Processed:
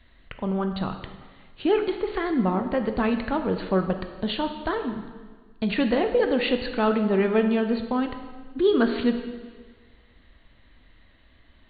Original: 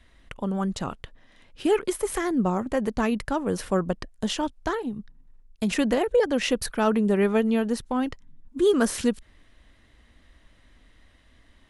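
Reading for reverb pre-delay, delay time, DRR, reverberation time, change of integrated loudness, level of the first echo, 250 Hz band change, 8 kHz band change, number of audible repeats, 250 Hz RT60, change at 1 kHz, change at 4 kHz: 6 ms, none, 6.0 dB, 1.5 s, +0.5 dB, none, +1.0 dB, under -40 dB, none, 1.5 s, +1.0 dB, +0.5 dB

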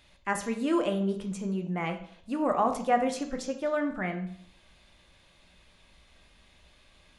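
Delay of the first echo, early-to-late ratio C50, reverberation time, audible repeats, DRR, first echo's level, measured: none, 10.0 dB, 0.60 s, none, 5.0 dB, none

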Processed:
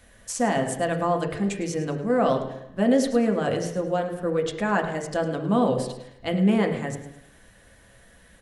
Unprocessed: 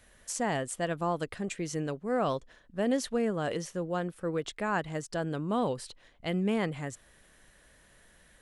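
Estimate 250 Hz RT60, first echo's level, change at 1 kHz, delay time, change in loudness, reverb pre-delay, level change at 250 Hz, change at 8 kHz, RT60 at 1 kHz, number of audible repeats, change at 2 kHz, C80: 0.90 s, -13.5 dB, +7.0 dB, 0.106 s, +7.5 dB, 3 ms, +8.5 dB, +4.0 dB, 0.85 s, 1, +6.0 dB, 9.0 dB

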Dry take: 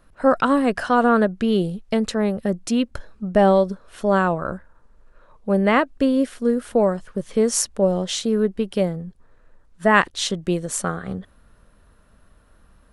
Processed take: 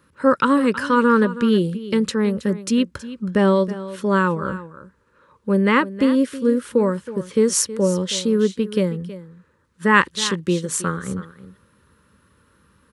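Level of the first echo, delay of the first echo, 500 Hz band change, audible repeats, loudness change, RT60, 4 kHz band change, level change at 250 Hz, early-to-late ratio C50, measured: -15.0 dB, 0.321 s, -0.5 dB, 1, +1.0 dB, none, +2.0 dB, +2.0 dB, none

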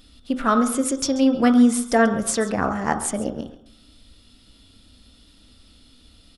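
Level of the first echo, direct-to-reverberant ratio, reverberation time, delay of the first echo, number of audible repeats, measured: -15.5 dB, 4.5 dB, 0.65 s, 0.136 s, 1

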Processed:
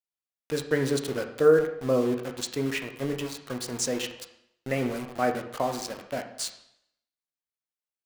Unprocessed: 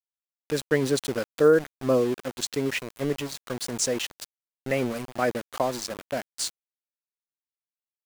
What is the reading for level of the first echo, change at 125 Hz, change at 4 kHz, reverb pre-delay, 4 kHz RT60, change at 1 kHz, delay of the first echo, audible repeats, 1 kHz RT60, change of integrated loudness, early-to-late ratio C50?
none, -0.5 dB, -2.5 dB, 5 ms, 0.70 s, 0.0 dB, none, none, 0.75 s, -1.0 dB, 9.0 dB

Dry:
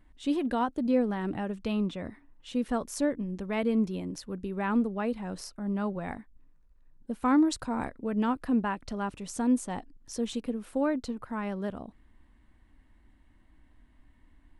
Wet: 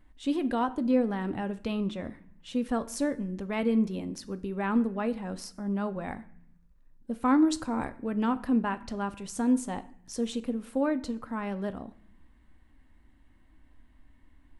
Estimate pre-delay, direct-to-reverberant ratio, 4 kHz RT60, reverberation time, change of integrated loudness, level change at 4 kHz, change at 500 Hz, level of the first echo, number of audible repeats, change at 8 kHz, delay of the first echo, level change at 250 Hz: 4 ms, 11.5 dB, 0.50 s, 0.65 s, +0.5 dB, 0.0 dB, 0.0 dB, none, none, 0.0 dB, none, +0.5 dB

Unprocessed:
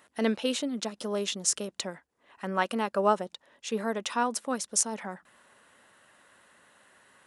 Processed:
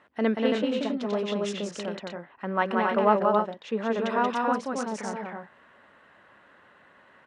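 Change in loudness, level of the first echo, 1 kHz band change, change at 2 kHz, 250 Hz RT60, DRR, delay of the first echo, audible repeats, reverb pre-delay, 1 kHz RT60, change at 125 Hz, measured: +3.0 dB, -3.5 dB, +5.0 dB, +4.0 dB, none, none, 0.182 s, 2, none, none, +4.5 dB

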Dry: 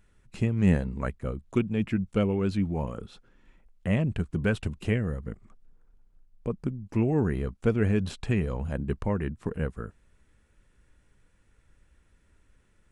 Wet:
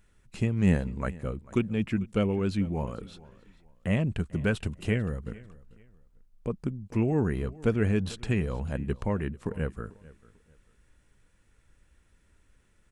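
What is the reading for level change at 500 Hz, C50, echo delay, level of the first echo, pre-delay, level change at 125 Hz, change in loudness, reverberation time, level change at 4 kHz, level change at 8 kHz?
-1.0 dB, none, 0.443 s, -21.0 dB, none, -1.0 dB, -1.0 dB, none, +1.0 dB, n/a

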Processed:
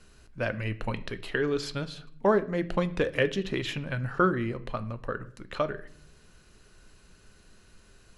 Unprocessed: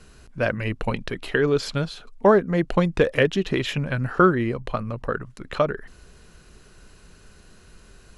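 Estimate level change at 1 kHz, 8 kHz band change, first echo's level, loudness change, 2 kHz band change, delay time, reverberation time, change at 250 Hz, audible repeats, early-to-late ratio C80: -6.5 dB, -5.5 dB, none, -7.0 dB, -5.5 dB, none, 0.55 s, -7.0 dB, none, 20.5 dB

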